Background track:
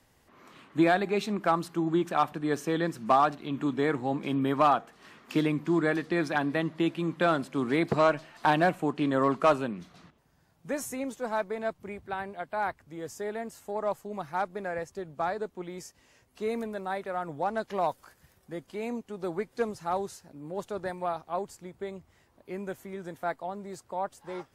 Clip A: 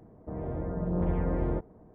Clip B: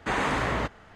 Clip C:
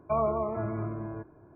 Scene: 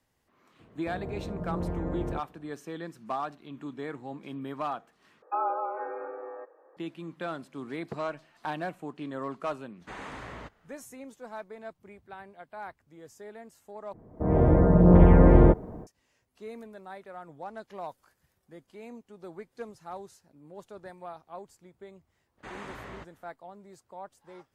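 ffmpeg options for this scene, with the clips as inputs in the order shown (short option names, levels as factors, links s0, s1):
-filter_complex "[1:a]asplit=2[s0][s1];[2:a]asplit=2[s2][s3];[0:a]volume=0.299[s4];[s0]highpass=49[s5];[3:a]highpass=f=200:t=q:w=0.5412,highpass=f=200:t=q:w=1.307,lowpass=f=2200:t=q:w=0.5176,lowpass=f=2200:t=q:w=0.7071,lowpass=f=2200:t=q:w=1.932,afreqshift=170[s6];[s1]dynaudnorm=f=210:g=3:m=5.62[s7];[s4]asplit=3[s8][s9][s10];[s8]atrim=end=5.224[s11];[s6]atrim=end=1.55,asetpts=PTS-STARTPTS,volume=0.794[s12];[s9]atrim=start=6.766:end=13.934[s13];[s7]atrim=end=1.94,asetpts=PTS-STARTPTS,volume=0.944[s14];[s10]atrim=start=15.866[s15];[s5]atrim=end=1.94,asetpts=PTS-STARTPTS,volume=0.668,afade=t=in:d=0.004:c=hsin,afade=t=out:st=1.936:d=0.004:c=hsin,adelay=590[s16];[s2]atrim=end=0.95,asetpts=PTS-STARTPTS,volume=0.178,afade=t=in:d=0.004:c=hsin,afade=t=out:st=0.946:d=0.004:c=hsin,adelay=9810[s17];[s3]atrim=end=0.95,asetpts=PTS-STARTPTS,volume=0.15,afade=t=in:d=0.02,afade=t=out:st=0.93:d=0.02,adelay=22370[s18];[s11][s12]acrossfade=d=0.004:c1=hsin:c2=hsin[s19];[s19][s13]acrossfade=d=0.004:c1=hsin:c2=hsin[s20];[s20][s14]acrossfade=d=0.004:c1=hsin:c2=hsin[s21];[s21][s15]acrossfade=d=0.004:c1=hsin:c2=hsin[s22];[s22][s16][s17][s18]amix=inputs=4:normalize=0"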